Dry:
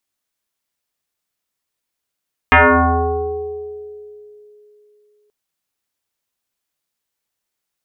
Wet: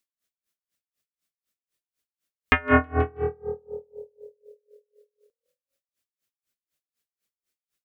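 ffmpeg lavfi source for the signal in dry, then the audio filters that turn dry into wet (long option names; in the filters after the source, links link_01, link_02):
-f lavfi -i "aevalsrc='0.562*pow(10,-3*t/3.17)*sin(2*PI*419*t+6.3*pow(10,-3*t/2.3)*sin(2*PI*0.81*419*t))':duration=2.78:sample_rate=44100"
-filter_complex "[0:a]equalizer=frequency=880:width=2.8:gain=-10.5,asplit=2[link_01][link_02];[link_02]asplit=4[link_03][link_04][link_05][link_06];[link_03]adelay=161,afreqshift=40,volume=-12.5dB[link_07];[link_04]adelay=322,afreqshift=80,volume=-19.8dB[link_08];[link_05]adelay=483,afreqshift=120,volume=-27.2dB[link_09];[link_06]adelay=644,afreqshift=160,volume=-34.5dB[link_10];[link_07][link_08][link_09][link_10]amix=inputs=4:normalize=0[link_11];[link_01][link_11]amix=inputs=2:normalize=0,aeval=exprs='val(0)*pow(10,-30*(0.5-0.5*cos(2*PI*4*n/s))/20)':channel_layout=same"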